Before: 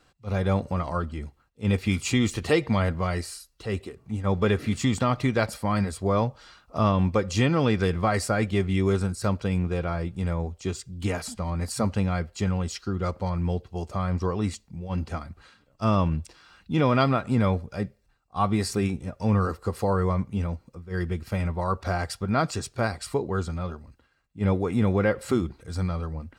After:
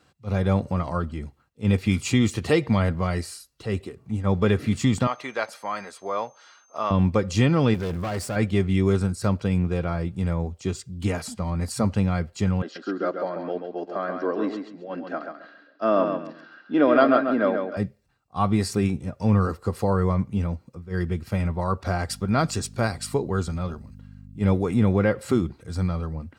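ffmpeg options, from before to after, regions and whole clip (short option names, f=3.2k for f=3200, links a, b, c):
-filter_complex "[0:a]asettb=1/sr,asplit=3[a][b][c];[a]atrim=end=5.074[d];[b]atrim=start=5.07:end=6.91,asetpts=PTS-STARTPTS,afade=t=in:d=0.004:c=qsin,afade=t=out:st=1.836:d=0.004:c=qsin,highpass=650,aemphasis=mode=reproduction:type=cd,aeval=exprs='val(0)+0.00112*sin(2*PI*6300*n/s)':c=same[e];[c]atrim=start=6.906[f];[d][e]acrossfade=d=0.004:c1=hsin:c2=qsin[g];[g][f]acrossfade=d=0.004:c1=qsin:c2=hsin,asettb=1/sr,asplit=3[h][i][j];[h]atrim=end=7.744[k];[i]atrim=start=7.74:end=8.36,asetpts=PTS-STARTPTS,afade=t=in:d=0.004:c=qsin,afade=t=out:st=0.616:d=0.004:c=qsin,aeval=exprs='val(0)+0.5*0.0112*sgn(val(0))':c=same,equalizer=f=2.1k:w=0.62:g=-3.5,aeval=exprs='(tanh(20*val(0)+0.55)-tanh(0.55))/20':c=same[l];[j]atrim=start=8.356[m];[k][l]acrossfade=d=0.004:c1=hsin:c2=qsin[n];[n][m]acrossfade=d=0.004:c1=qsin:c2=hsin,asettb=1/sr,asplit=3[o][p][q];[o]atrim=end=12.624[r];[p]atrim=start=12.62:end=17.77,asetpts=PTS-STARTPTS,afade=t=in:d=0.004:c=qsin,afade=t=out:st=5.146:d=0.004:c=qsin,highpass=f=280:w=0.5412,highpass=f=280:w=1.3066,equalizer=f=290:t=q:w=4:g=8,equalizer=f=630:t=q:w=4:g=9,equalizer=f=920:t=q:w=4:g=-5,equalizer=f=1.6k:t=q:w=4:g=10,equalizer=f=2.3k:t=q:w=4:g=-7,equalizer=f=3.5k:t=q:w=4:g=-4,lowpass=f=4.1k:w=0.5412,lowpass=f=4.1k:w=1.3066,aecho=1:1:135|270|405:0.501|0.12|0.0289,atrim=end_sample=227115[s];[q]atrim=start=17.766[t];[r][s]acrossfade=d=0.004:c1=hsin:c2=qsin[u];[u][t]acrossfade=d=0.004:c1=qsin:c2=hsin,asettb=1/sr,asplit=3[v][w][x];[v]atrim=end=22.094[y];[w]atrim=start=22.09:end=24.74,asetpts=PTS-STARTPTS,afade=t=in:d=0.004:c=qsin,afade=t=out:st=2.646:d=0.004:c=qsin,highshelf=f=4.3k:g=6,aeval=exprs='val(0)+0.00794*(sin(2*PI*50*n/s)+sin(2*PI*2*50*n/s)/2+sin(2*PI*3*50*n/s)/3+sin(2*PI*4*50*n/s)/4+sin(2*PI*5*50*n/s)/5)':c=same[z];[x]atrim=start=24.736[aa];[y][z]acrossfade=d=0.004:c1=hsin:c2=qsin[ab];[ab][aa]acrossfade=d=0.004:c1=qsin:c2=hsin,highpass=93,lowshelf=f=240:g=6"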